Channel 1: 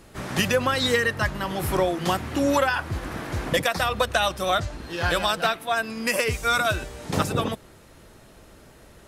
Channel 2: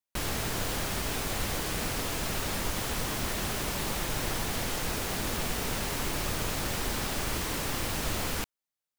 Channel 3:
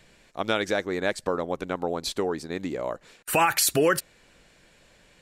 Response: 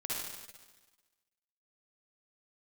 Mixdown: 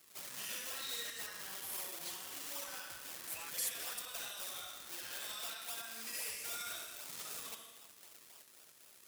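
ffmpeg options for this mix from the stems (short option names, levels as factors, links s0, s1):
-filter_complex "[0:a]acompressor=threshold=0.0447:ratio=2,volume=1.19,asplit=2[s0][s1];[s1]volume=0.266[s2];[1:a]volume=0.141[s3];[2:a]volume=0.158[s4];[s0][s3]amix=inputs=2:normalize=0,acrusher=samples=41:mix=1:aa=0.000001:lfo=1:lforange=41:lforate=3.8,acompressor=threshold=0.0224:ratio=2,volume=1[s5];[3:a]atrim=start_sample=2205[s6];[s2][s6]afir=irnorm=-1:irlink=0[s7];[s4][s5][s7]amix=inputs=3:normalize=0,aderivative,asoftclip=type=hard:threshold=0.0422"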